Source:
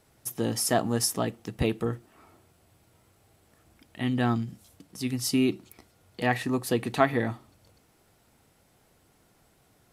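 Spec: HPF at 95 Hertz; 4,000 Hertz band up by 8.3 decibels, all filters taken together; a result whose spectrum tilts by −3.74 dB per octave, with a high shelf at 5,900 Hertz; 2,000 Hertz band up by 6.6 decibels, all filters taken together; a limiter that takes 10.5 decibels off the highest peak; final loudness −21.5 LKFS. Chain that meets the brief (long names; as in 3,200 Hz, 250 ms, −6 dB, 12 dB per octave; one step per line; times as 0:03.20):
high-pass filter 95 Hz
parametric band 2,000 Hz +5.5 dB
parametric band 4,000 Hz +8 dB
high-shelf EQ 5,900 Hz +5 dB
level +5.5 dB
brickwall limiter −7.5 dBFS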